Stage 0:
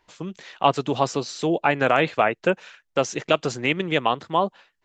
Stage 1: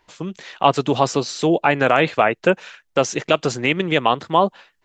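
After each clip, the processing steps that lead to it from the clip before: in parallel at -2 dB: peak limiter -11 dBFS, peak gain reduction 7 dB; on the sum: level rider; trim -1 dB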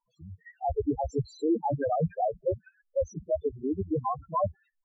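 octave divider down 1 oct, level +1 dB; level held to a coarse grid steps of 19 dB; loudest bins only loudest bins 2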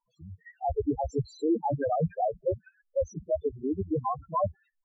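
no audible change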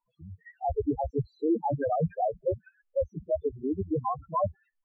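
low-pass 2.9 kHz 24 dB/octave

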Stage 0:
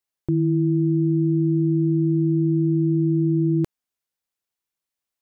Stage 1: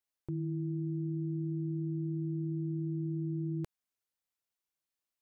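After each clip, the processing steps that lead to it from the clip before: dynamic bell 280 Hz, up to -7 dB, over -36 dBFS, Q 1.1; peak limiter -24.5 dBFS, peak gain reduction 9 dB; trim -5 dB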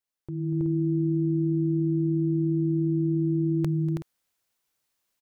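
multi-tap echo 240/324/375 ms -17/-5/-12 dB; level rider gain up to 11 dB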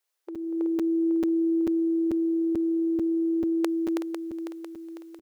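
brick-wall FIR high-pass 330 Hz; feedback delay 500 ms, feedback 47%, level -8 dB; crackling interface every 0.44 s, samples 256, zero, from 0.35 s; trim +8 dB

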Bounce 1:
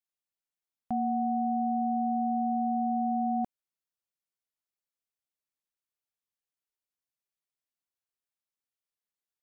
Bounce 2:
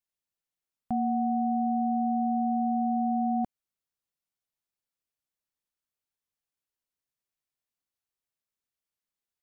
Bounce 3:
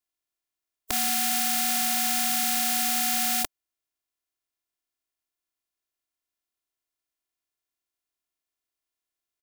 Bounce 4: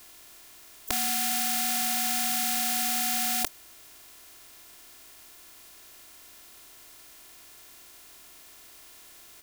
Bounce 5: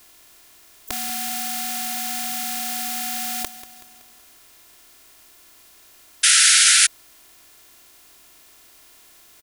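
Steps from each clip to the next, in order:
bass shelf 220 Hz +5.5 dB
spectral contrast reduction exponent 0.16; comb 2.9 ms, depth 91%
level flattener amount 100%; trim -2.5 dB
feedback delay 188 ms, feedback 52%, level -14.5 dB; painted sound noise, 6.23–6.87 s, 1.3–11 kHz -14 dBFS

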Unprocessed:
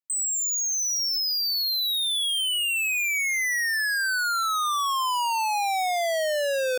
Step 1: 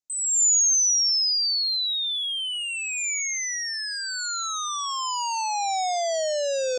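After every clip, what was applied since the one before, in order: FFT filter 760 Hz 0 dB, 1.7 kHz -11 dB, 7.1 kHz +8 dB, 11 kHz -29 dB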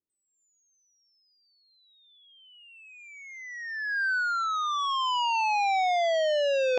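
reverse; upward compressor, threshold -26 dBFS; reverse; low-pass sweep 370 Hz -> 2.6 kHz, 1.47–4.92 s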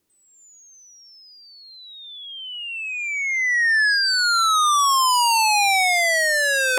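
in parallel at -1 dB: compression, threshold -35 dBFS, peak gain reduction 11 dB; on the sum: sine folder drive 12 dB, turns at -15.5 dBFS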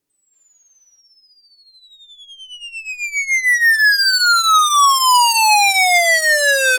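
comb 7.1 ms, depth 48%; time-frequency box 0.33–1.00 s, 540–5400 Hz +9 dB; Chebyshev shaper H 7 -20 dB, 8 -32 dB, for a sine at -12 dBFS; trim +4.5 dB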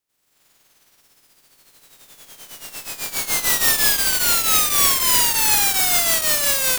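spectral contrast reduction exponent 0.21; trim -3.5 dB

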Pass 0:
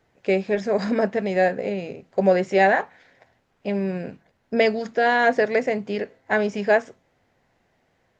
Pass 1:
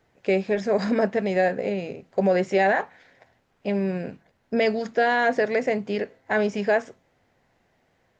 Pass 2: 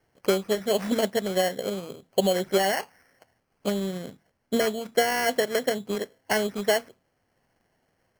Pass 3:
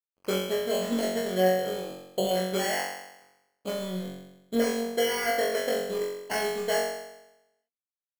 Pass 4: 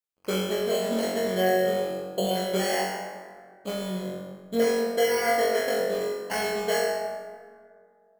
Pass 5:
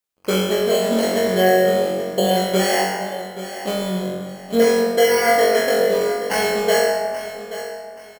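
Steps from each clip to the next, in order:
peak limiter -12 dBFS, peak gain reduction 5 dB
transient shaper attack +6 dB, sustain -2 dB; sample-and-hold 12×; trim -4.5 dB
crossover distortion -53 dBFS; on a send: flutter echo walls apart 3.7 m, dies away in 0.91 s; on the sum: trim -7.5 dB
plate-style reverb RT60 2.1 s, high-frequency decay 0.4×, DRR 2.5 dB
feedback delay 830 ms, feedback 30%, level -13 dB; trim +8 dB

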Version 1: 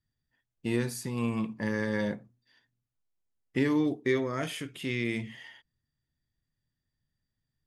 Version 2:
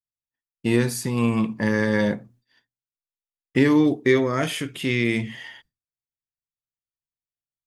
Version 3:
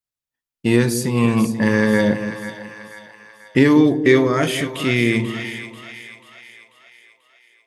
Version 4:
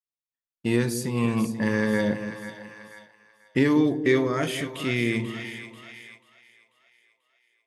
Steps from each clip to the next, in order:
expander -59 dBFS; trim +9 dB
two-band feedback delay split 680 Hz, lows 190 ms, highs 489 ms, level -10 dB; trim +4.5 dB
gate -40 dBFS, range -6 dB; trim -7.5 dB

